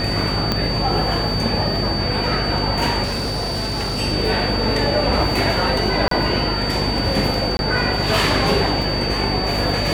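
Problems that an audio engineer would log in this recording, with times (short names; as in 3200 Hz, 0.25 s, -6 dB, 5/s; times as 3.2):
buzz 50 Hz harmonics 14 -25 dBFS
tone 4600 Hz -24 dBFS
0.52 pop -5 dBFS
3.03–4 clipped -19.5 dBFS
6.08–6.11 gap 33 ms
7.57–7.59 gap 21 ms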